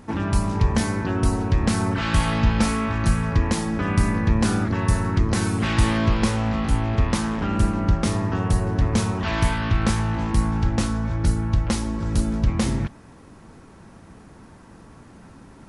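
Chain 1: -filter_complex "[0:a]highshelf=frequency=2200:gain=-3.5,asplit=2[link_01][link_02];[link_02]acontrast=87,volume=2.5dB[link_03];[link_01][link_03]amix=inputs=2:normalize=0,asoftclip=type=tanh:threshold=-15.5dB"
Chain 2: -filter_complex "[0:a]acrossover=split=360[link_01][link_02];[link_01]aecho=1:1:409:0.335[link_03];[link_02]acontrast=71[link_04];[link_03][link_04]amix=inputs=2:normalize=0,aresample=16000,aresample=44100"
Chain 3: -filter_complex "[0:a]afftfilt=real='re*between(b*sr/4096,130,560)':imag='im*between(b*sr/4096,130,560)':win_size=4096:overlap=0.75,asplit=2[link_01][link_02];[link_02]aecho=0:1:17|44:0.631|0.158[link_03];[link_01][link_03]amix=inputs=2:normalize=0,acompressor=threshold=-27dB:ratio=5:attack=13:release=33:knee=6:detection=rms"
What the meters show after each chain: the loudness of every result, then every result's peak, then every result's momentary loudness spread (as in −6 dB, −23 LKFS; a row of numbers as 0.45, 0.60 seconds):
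−19.0, −20.0, −30.0 LKFS; −15.5, −2.0, −18.0 dBFS; 17, 4, 19 LU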